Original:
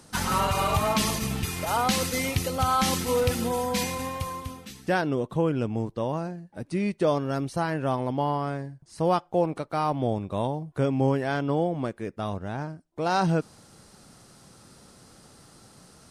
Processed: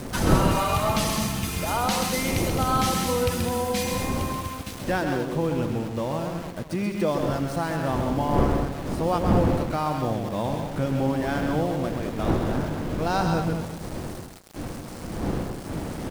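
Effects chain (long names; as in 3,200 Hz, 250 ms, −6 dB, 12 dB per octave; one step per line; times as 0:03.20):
delay that plays each chunk backwards 210 ms, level −12.5 dB
wind on the microphone 340 Hz −29 dBFS
notch filter 420 Hz, Q 12
in parallel at +3 dB: downward compressor, threshold −33 dBFS, peak gain reduction 21 dB
on the sum: centre clipping without the shift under −32 dBFS
on a send: loudspeakers that aren't time-aligned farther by 45 metres −6 dB, 72 metres −9 dB
on the sum: level −4 dB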